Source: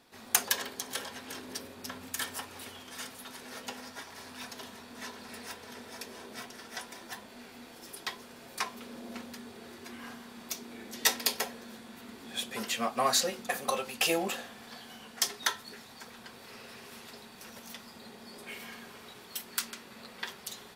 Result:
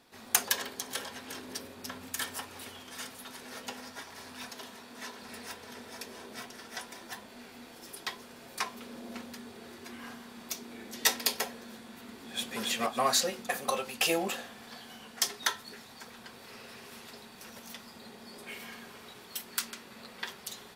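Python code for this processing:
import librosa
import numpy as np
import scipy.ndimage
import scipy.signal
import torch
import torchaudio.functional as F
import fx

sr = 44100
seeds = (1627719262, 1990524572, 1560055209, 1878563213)

y = fx.highpass(x, sr, hz=170.0, slope=6, at=(4.49, 5.23))
y = fx.echo_throw(y, sr, start_s=12.1, length_s=0.48, ms=280, feedback_pct=25, wet_db=-1.0)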